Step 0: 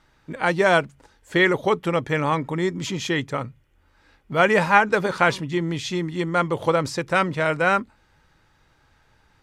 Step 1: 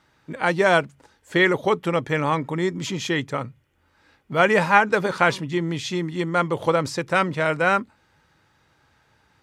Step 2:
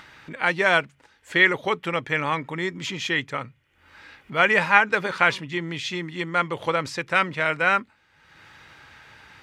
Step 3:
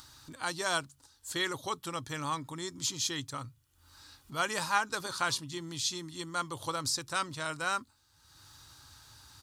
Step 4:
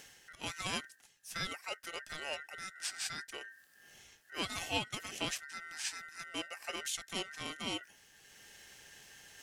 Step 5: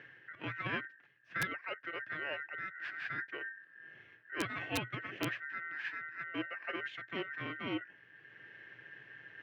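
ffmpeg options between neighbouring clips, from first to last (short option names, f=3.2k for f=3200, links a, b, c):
-af "highpass=82"
-af "equalizer=f=2.3k:w=0.69:g=10.5,acompressor=mode=upward:threshold=-29dB:ratio=2.5,volume=-6.5dB"
-af "firequalizer=gain_entry='entry(110,0);entry(190,-16);entry(270,-6);entry(440,-16);entry(1100,-7);entry(2100,-22);entry(4100,3);entry(9200,11)':delay=0.05:min_phase=1"
-af "areverse,acompressor=mode=upward:threshold=-42dB:ratio=2.5,areverse,aeval=exprs='val(0)*sin(2*PI*1700*n/s)':c=same,volume=-3.5dB"
-af "highpass=f=110:w=0.5412,highpass=f=110:w=1.3066,equalizer=f=120:t=q:w=4:g=9,equalizer=f=210:t=q:w=4:g=-6,equalizer=f=320:t=q:w=4:g=6,equalizer=f=800:t=q:w=4:g=-9,equalizer=f=1.7k:t=q:w=4:g=9,lowpass=f=2.4k:w=0.5412,lowpass=f=2.4k:w=1.3066,aeval=exprs='(mod(21.1*val(0)+1,2)-1)/21.1':c=same,volume=1.5dB"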